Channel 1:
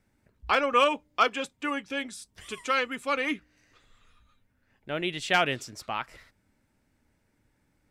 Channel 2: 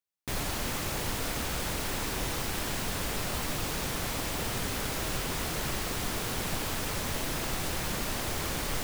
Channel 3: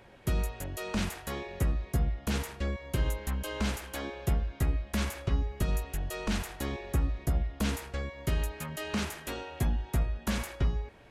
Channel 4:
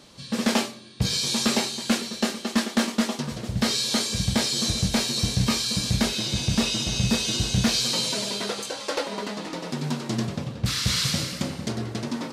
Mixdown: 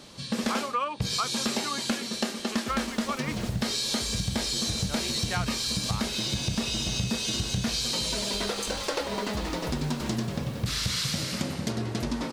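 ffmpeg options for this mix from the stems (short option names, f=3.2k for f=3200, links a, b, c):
-filter_complex "[0:a]equalizer=f=1.1k:w=1.5:g=9.5,volume=-4.5dB[a];[1:a]adelay=2400,volume=-15dB[b];[2:a]adelay=2400,volume=-6.5dB[c];[3:a]volume=2.5dB[d];[a][b][c][d]amix=inputs=4:normalize=0,acompressor=threshold=-26dB:ratio=5"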